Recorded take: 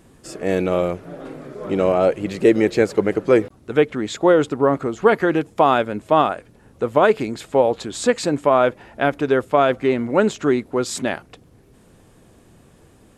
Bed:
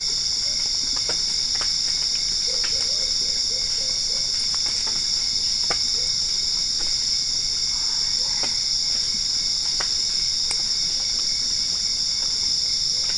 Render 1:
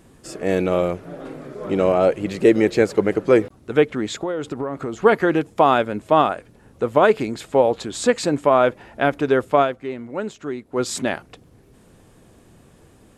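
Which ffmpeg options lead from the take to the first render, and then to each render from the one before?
ffmpeg -i in.wav -filter_complex "[0:a]asettb=1/sr,asplit=3[link_01][link_02][link_03];[link_01]atrim=end=4.214[link_04];[link_02]atrim=start=4.21:end=5.01,asetpts=PTS-STARTPTS,afade=type=in:duration=0.004:curve=qsin,afade=type=out:start_time=0.796:duration=0.004:curve=qsin,acompressor=threshold=-22dB:ratio=6:attack=3.2:release=140:knee=1:detection=peak[link_05];[link_03]atrim=start=5.006[link_06];[link_04][link_05]acrossfade=duration=0.004:curve1=hsin:curve2=qsin[link_07];[link_07][link_06]acrossfade=duration=0.004:curve1=qsin:curve2=hsin,asplit=3[link_08][link_09][link_10];[link_08]atrim=end=9.76,asetpts=PTS-STARTPTS,afade=type=out:start_time=9.61:duration=0.15:curve=qua:silence=0.298538[link_11];[link_09]atrim=start=9.76:end=10.65,asetpts=PTS-STARTPTS,volume=-10.5dB[link_12];[link_10]atrim=start=10.65,asetpts=PTS-STARTPTS,afade=type=in:duration=0.15:curve=qua:silence=0.298538[link_13];[link_11][link_12][link_13]concat=n=3:v=0:a=1" out.wav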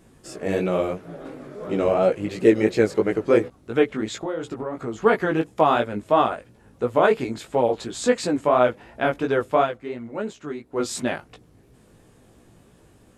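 ffmpeg -i in.wav -af "flanger=delay=16:depth=4:speed=2.9" out.wav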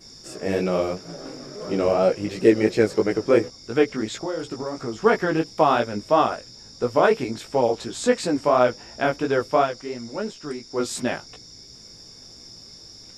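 ffmpeg -i in.wav -i bed.wav -filter_complex "[1:a]volume=-22.5dB[link_01];[0:a][link_01]amix=inputs=2:normalize=0" out.wav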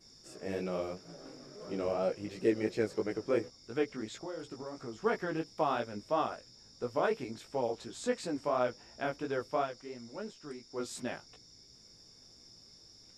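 ffmpeg -i in.wav -af "volume=-13dB" out.wav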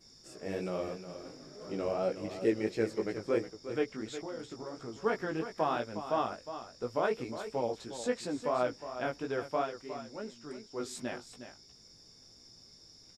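ffmpeg -i in.wav -af "aecho=1:1:361:0.282" out.wav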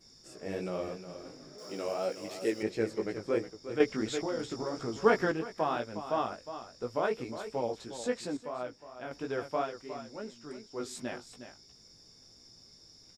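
ffmpeg -i in.wav -filter_complex "[0:a]asettb=1/sr,asplit=3[link_01][link_02][link_03];[link_01]atrim=end=1.584[link_04];[link_02]atrim=start=1.58:end=2.63,asetpts=PTS-STARTPTS,afade=type=in:duration=0.004:curve=qsin,afade=type=out:start_time=1.046:duration=0.004:curve=qsin,aemphasis=mode=production:type=bsi[link_05];[link_03]atrim=start=2.626[link_06];[link_04][link_05]acrossfade=duration=0.004:curve1=hsin:curve2=qsin[link_07];[link_07][link_06]acrossfade=duration=0.004:curve1=qsin:curve2=hsin,asettb=1/sr,asplit=3[link_08][link_09][link_10];[link_08]atrim=end=3.804[link_11];[link_09]atrim=start=3.8:end=5.32,asetpts=PTS-STARTPTS,afade=type=in:duration=0.004:curve=qsin,afade=type=out:start_time=1.516:duration=0.004:curve=qsin,acontrast=78[link_12];[link_10]atrim=start=5.316[link_13];[link_11][link_12]acrossfade=duration=0.004:curve1=hsin:curve2=qsin[link_14];[link_14][link_13]acrossfade=duration=0.004:curve1=qsin:curve2=hsin,asplit=3[link_15][link_16][link_17];[link_15]atrim=end=8.372[link_18];[link_16]atrim=start=8.368:end=9.112,asetpts=PTS-STARTPTS,volume=-7.5dB[link_19];[link_17]atrim=start=9.108[link_20];[link_18][link_19]acrossfade=duration=0.004:curve1=hsin:curve2=hsin[link_21];[link_21][link_20]acrossfade=duration=0.004:curve1=hsin:curve2=hsin" out.wav

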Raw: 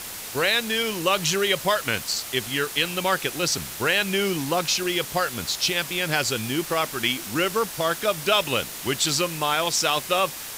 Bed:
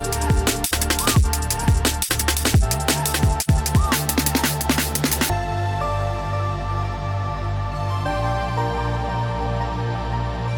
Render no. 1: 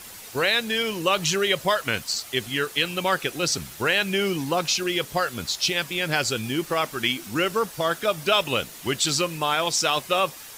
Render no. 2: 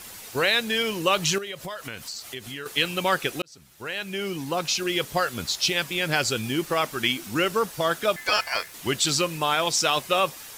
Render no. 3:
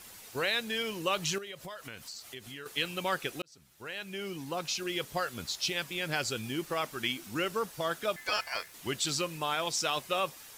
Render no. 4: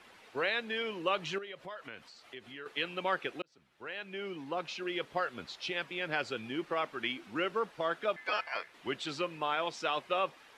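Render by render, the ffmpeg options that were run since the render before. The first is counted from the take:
ffmpeg -i in.wav -af "afftdn=noise_reduction=8:noise_floor=-36" out.wav
ffmpeg -i in.wav -filter_complex "[0:a]asettb=1/sr,asplit=3[link_01][link_02][link_03];[link_01]atrim=end=1.384[link_04];[link_02]atrim=start=1.38:end=2.66,asetpts=PTS-STARTPTS,afade=type=in:duration=0.004:curve=qsin,afade=type=out:start_time=1.276:duration=0.004:curve=qsin,acompressor=threshold=-33dB:ratio=4:attack=3.2:release=140:knee=1:detection=peak[link_05];[link_03]atrim=start=2.656[link_06];[link_04][link_05]acrossfade=duration=0.004:curve1=hsin:curve2=qsin[link_07];[link_07][link_06]acrossfade=duration=0.004:curve1=qsin:curve2=hsin,asettb=1/sr,asplit=3[link_08][link_09][link_10];[link_08]atrim=end=8.164[link_11];[link_09]atrim=start=8.16:end=8.74,asetpts=PTS-STARTPTS,afade=type=in:duration=0.004:curve=qsin,afade=type=out:start_time=0.576:duration=0.004:curve=qsin,aeval=exprs='val(0)*sin(2*PI*1900*n/s)':channel_layout=same[link_12];[link_10]atrim=start=8.736[link_13];[link_11][link_12]acrossfade=duration=0.004:curve1=hsin:curve2=qsin[link_14];[link_14][link_13]acrossfade=duration=0.004:curve1=qsin:curve2=hsin,asplit=2[link_15][link_16];[link_15]atrim=end=3.42,asetpts=PTS-STARTPTS,afade=type=out:start_time=3.416:duration=0.004:curve=hsin[link_17];[link_16]atrim=start=3.42,asetpts=PTS-STARTPTS,afade=type=in:duration=1.61[link_18];[link_17][link_18]concat=n=2:v=0:a=1" out.wav
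ffmpeg -i in.wav -af "volume=-8.5dB" out.wav
ffmpeg -i in.wav -filter_complex "[0:a]lowpass=frequency=12000:width=0.5412,lowpass=frequency=12000:width=1.3066,acrossover=split=220 3400:gain=0.251 1 0.0794[link_01][link_02][link_03];[link_01][link_02][link_03]amix=inputs=3:normalize=0" out.wav

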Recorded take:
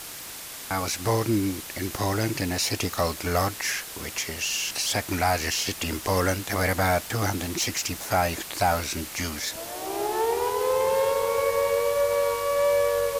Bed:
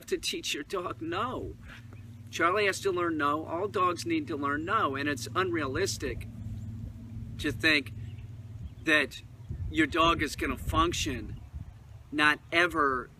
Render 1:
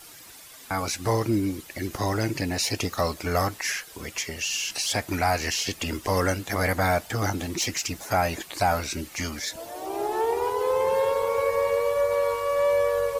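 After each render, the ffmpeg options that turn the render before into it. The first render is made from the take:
ffmpeg -i in.wav -af "afftdn=noise_reduction=11:noise_floor=-39" out.wav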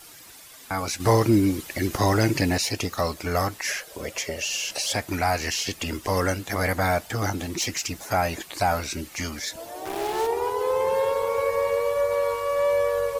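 ffmpeg -i in.wav -filter_complex "[0:a]asettb=1/sr,asplit=3[link_01][link_02][link_03];[link_01]atrim=end=1.004[link_04];[link_02]atrim=start=1:end=2.58,asetpts=PTS-STARTPTS,afade=type=in:duration=0.004:curve=qsin,afade=type=out:start_time=1.576:duration=0.004:curve=qsin,acontrast=36[link_05];[link_03]atrim=start=2.576[link_06];[link_04][link_05]acrossfade=duration=0.004:curve1=hsin:curve2=qsin[link_07];[link_07][link_06]acrossfade=duration=0.004:curve1=qsin:curve2=hsin,asettb=1/sr,asplit=3[link_08][link_09][link_10];[link_08]atrim=end=3.674[link_11];[link_09]atrim=start=3.67:end=4.93,asetpts=PTS-STARTPTS,afade=type=in:duration=0.004:curve=qsin,afade=type=out:start_time=1.256:duration=0.004:curve=qsin,equalizer=frequency=570:width=2.4:gain=14.5[link_12];[link_10]atrim=start=4.926[link_13];[link_11][link_12]acrossfade=duration=0.004:curve1=hsin:curve2=qsin[link_14];[link_14][link_13]acrossfade=duration=0.004:curve1=qsin:curve2=hsin,asettb=1/sr,asplit=3[link_15][link_16][link_17];[link_15]atrim=end=9.854[link_18];[link_16]atrim=start=9.85:end=10.27,asetpts=PTS-STARTPTS,afade=type=in:duration=0.004:curve=qsin,afade=type=out:start_time=0.416:duration=0.004:curve=qsin,acrusher=bits=4:mix=0:aa=0.5[link_19];[link_17]atrim=start=10.266[link_20];[link_18][link_19]acrossfade=duration=0.004:curve1=hsin:curve2=qsin[link_21];[link_21][link_20]acrossfade=duration=0.004:curve1=qsin:curve2=hsin" out.wav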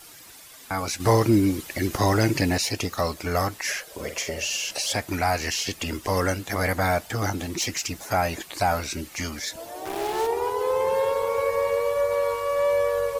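ffmpeg -i in.wav -filter_complex "[0:a]asettb=1/sr,asplit=3[link_01][link_02][link_03];[link_01]atrim=end=3.934[link_04];[link_02]atrim=start=3.93:end=4.57,asetpts=PTS-STARTPTS,afade=type=in:duration=0.004:curve=qsin,afade=type=out:start_time=0.636:duration=0.004:curve=qsin,asplit=2[link_05][link_06];[link_06]adelay=49,volume=-8.5dB[link_07];[link_05][link_07]amix=inputs=2:normalize=0,atrim=end_sample=28224[link_08];[link_03]atrim=start=4.566[link_09];[link_04][link_08]acrossfade=duration=0.004:curve1=hsin:curve2=qsin[link_10];[link_10][link_09]acrossfade=duration=0.004:curve1=qsin:curve2=hsin" out.wav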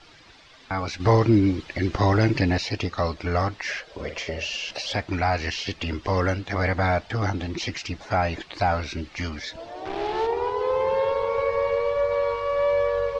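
ffmpeg -i in.wav -af "lowpass=frequency=4600:width=0.5412,lowpass=frequency=4600:width=1.3066,lowshelf=frequency=64:gain=10" out.wav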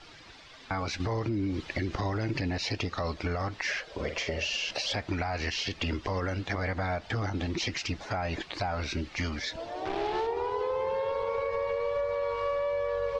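ffmpeg -i in.wav -af "alimiter=limit=-18dB:level=0:latency=1:release=76,acompressor=threshold=-27dB:ratio=6" out.wav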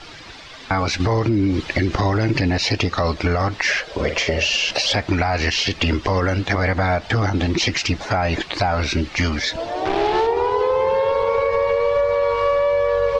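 ffmpeg -i in.wav -af "volume=12dB" out.wav

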